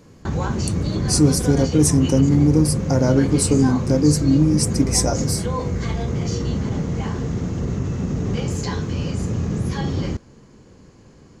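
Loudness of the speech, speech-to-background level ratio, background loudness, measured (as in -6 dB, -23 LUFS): -18.5 LUFS, 5.5 dB, -24.0 LUFS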